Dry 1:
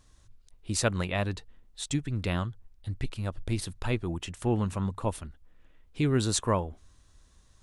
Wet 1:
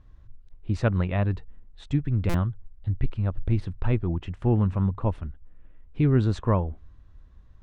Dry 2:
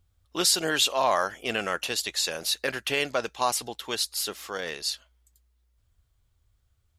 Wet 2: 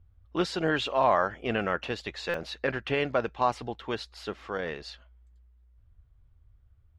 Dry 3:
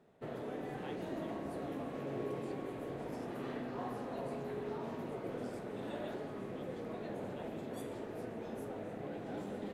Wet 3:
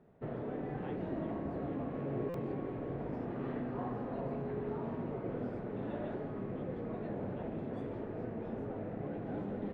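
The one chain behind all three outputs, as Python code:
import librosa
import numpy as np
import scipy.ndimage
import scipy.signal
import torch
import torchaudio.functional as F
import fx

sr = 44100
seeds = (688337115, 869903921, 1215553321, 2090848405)

y = scipy.signal.sosfilt(scipy.signal.butter(2, 2100.0, 'lowpass', fs=sr, output='sos'), x)
y = fx.low_shelf(y, sr, hz=200.0, db=10.0)
y = fx.buffer_glitch(y, sr, at_s=(2.29,), block=256, repeats=8)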